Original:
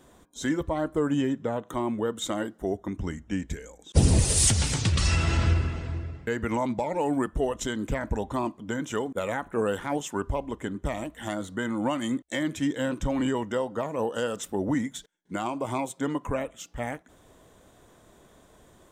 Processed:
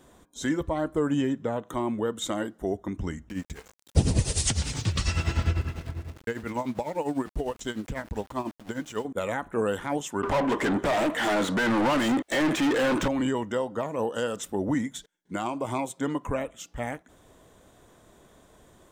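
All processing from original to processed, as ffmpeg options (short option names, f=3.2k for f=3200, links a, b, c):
-filter_complex "[0:a]asettb=1/sr,asplit=3[a][b][c];[a]atrim=end=3.294[d];[b]atrim=start=3.29:end=9.05,asetpts=PTS-STARTPTS,afade=t=in:d=0.004:c=qsin,afade=t=out:st=5.756:d=0.004:c=qsin,aeval=exprs='val(0)*gte(abs(val(0)),0.01)':c=same,tremolo=f=10:d=0.76,acrossover=split=9000[e][f];[f]acompressor=threshold=-55dB:ratio=4:attack=1:release=60[g];[e][g]amix=inputs=2:normalize=0[h];[c]atrim=start=9.046[i];[d][h]acrossfade=d=0.004:c1=hsin:c2=qsin[j];[j][i]acrossfade=d=0.004:c1=qsin:c2=hsin,asettb=1/sr,asplit=3[k][l][m];[k]atrim=end=10.234[n];[l]atrim=start=10.23:end=13.08,asetpts=PTS-STARTPTS,afade=t=in:d=0.004:c=qsin,afade=t=out:st=2.846:d=0.004:c=qsin,asplit=2[o][p];[p]highpass=f=720:p=1,volume=35dB,asoftclip=type=tanh:threshold=-16.5dB[q];[o][q]amix=inputs=2:normalize=0,lowpass=f=1.9k:p=1,volume=-6dB,equalizer=f=70:w=2.1:g=-14.5[r];[m]atrim=start=13.076[s];[n][r]acrossfade=d=0.004:c1=hsin:c2=qsin[t];[t][s]acrossfade=d=0.004:c1=qsin:c2=hsin"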